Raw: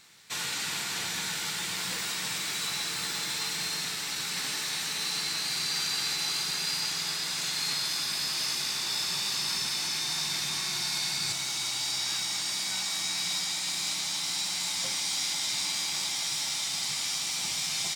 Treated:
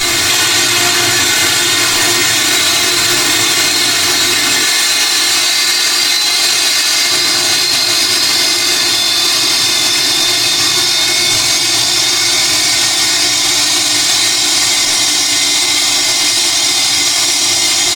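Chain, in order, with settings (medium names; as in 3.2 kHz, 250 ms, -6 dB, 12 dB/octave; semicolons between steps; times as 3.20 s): comb 2.8 ms, depth 80%; echo that smears into a reverb 1230 ms, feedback 71%, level -3.5 dB; simulated room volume 200 m³, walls furnished, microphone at 3.8 m; compressor with a negative ratio -33 dBFS, ratio -1; 4.65–7.11 s: bass shelf 370 Hz -9.5 dB; loudness maximiser +25 dB; trim -1 dB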